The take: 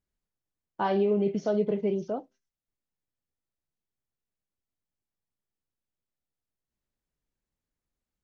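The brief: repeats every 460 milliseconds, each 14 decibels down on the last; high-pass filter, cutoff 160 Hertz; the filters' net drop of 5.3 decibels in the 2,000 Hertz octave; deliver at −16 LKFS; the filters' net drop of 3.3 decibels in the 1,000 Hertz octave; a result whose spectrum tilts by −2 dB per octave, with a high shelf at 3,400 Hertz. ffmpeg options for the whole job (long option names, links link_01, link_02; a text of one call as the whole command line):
ffmpeg -i in.wav -af "highpass=160,equalizer=frequency=1000:width_type=o:gain=-3,equalizer=frequency=2000:width_type=o:gain=-4,highshelf=frequency=3400:gain=-8,aecho=1:1:460|920:0.2|0.0399,volume=13dB" out.wav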